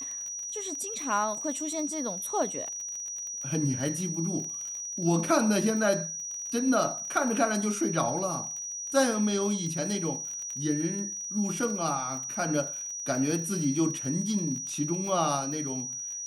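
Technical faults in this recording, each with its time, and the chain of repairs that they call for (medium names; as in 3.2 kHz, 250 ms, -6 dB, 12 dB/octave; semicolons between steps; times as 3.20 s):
crackle 32 per s -35 dBFS
whine 5.8 kHz -34 dBFS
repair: de-click; band-stop 5.8 kHz, Q 30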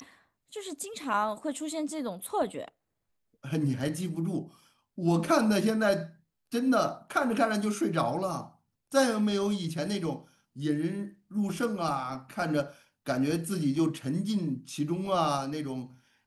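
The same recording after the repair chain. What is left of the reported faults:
nothing left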